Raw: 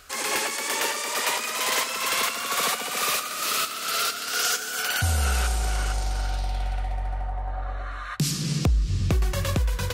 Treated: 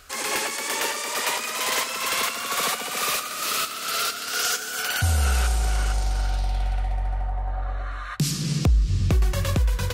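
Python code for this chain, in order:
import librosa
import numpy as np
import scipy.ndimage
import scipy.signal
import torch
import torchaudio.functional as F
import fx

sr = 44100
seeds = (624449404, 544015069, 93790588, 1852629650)

y = fx.low_shelf(x, sr, hz=130.0, db=3.5)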